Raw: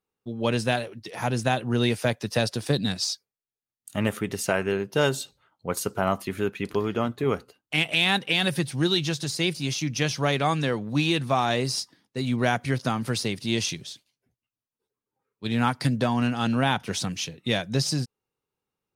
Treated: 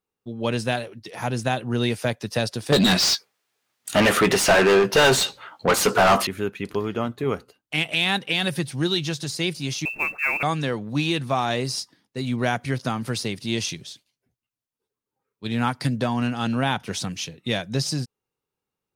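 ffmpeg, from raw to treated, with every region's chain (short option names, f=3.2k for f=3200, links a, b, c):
-filter_complex "[0:a]asettb=1/sr,asplit=3[a][b][c];[a]atrim=end=2.724[d];[b]atrim=start=2.72:end=6.27,asetpts=PTS-STARTPTS,afade=t=in:d=0.004:c=qsin,afade=t=out:st=3.546:d=0.004:c=qsin,asplit=2[e][f];[f]highpass=f=720:p=1,volume=32dB,asoftclip=type=tanh:threshold=-8dB[g];[e][g]amix=inputs=2:normalize=0,lowpass=f=3.1k:p=1,volume=-6dB,asplit=2[h][i];[i]adelay=16,volume=-11.5dB[j];[h][j]amix=inputs=2:normalize=0,atrim=end_sample=156555[k];[c]atrim=start=6.266[l];[d][k]acrossfade=d=0.004:c1=hsin:c2=qsin[m];[m][l]acrossfade=d=0.004:c1=qsin:c2=hsin,asettb=1/sr,asplit=3[n][o][p];[n]atrim=end=9.854[q];[o]atrim=start=9.85:end=10.43,asetpts=PTS-STARTPTS,afade=t=in:d=0.004:c=qsin,afade=t=out:st=0.576:d=0.004:c=qsin,lowpass=f=2.4k:t=q:w=0.5098,lowpass=f=2.4k:t=q:w=0.6013,lowpass=f=2.4k:t=q:w=0.9,lowpass=f=2.4k:t=q:w=2.563,afreqshift=-2800,acrusher=bits=6:mode=log:mix=0:aa=0.000001[r];[p]atrim=start=10.426[s];[q][r]acrossfade=d=0.004:c1=hsin:c2=qsin[t];[t][s]acrossfade=d=0.004:c1=qsin:c2=hsin"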